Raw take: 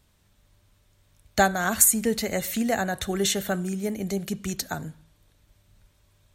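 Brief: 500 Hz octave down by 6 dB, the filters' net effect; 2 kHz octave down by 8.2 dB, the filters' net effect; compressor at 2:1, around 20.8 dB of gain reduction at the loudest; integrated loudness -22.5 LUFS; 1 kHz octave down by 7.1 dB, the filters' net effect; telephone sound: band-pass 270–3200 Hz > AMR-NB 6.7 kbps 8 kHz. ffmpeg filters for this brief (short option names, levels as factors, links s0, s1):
-af "equalizer=f=500:t=o:g=-5,equalizer=f=1000:t=o:g=-6.5,equalizer=f=2000:t=o:g=-7.5,acompressor=threshold=0.002:ratio=2,highpass=270,lowpass=3200,volume=25.1" -ar 8000 -c:a libopencore_amrnb -b:a 6700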